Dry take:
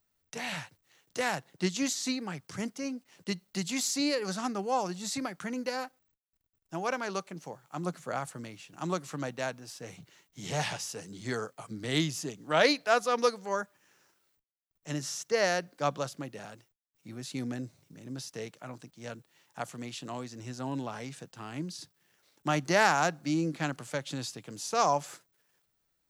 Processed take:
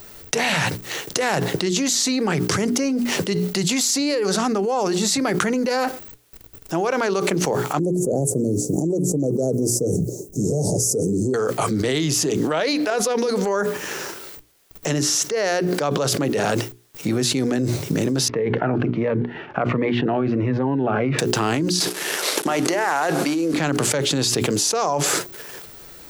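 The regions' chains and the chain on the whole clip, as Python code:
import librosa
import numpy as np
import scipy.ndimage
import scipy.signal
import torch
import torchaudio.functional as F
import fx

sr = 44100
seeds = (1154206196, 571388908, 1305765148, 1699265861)

y = fx.chain(x, sr, fx.cheby2_bandstop(low_hz=1200.0, high_hz=3200.0, order=4, stop_db=60),
    fx.high_shelf(hz=7600.0, db=-8.5), at=(7.79, 11.34))
y = fx.chain(y, sr, fx.over_compress(threshold_db=-30.0, ratio=-1.0),
    fx.notch(hz=1200.0, q=11.0), at=(12.9, 13.31))
y = fx.chain(y, sr, fx.lowpass(hz=2200.0, slope=24),
    fx.notch_cascade(direction='falling', hz=1.4), at=(18.28, 21.19))
y = fx.chain(y, sr, fx.cvsd(bps=64000),
    fx.highpass(hz=330.0, slope=12),
    fx.over_compress(threshold_db=-38.0, ratio=-1.0), at=(21.8, 23.54))
y = fx.peak_eq(y, sr, hz=410.0, db=8.0, octaves=0.69)
y = fx.hum_notches(y, sr, base_hz=60, count=7)
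y = fx.env_flatten(y, sr, amount_pct=100)
y = y * librosa.db_to_amplitude(-4.5)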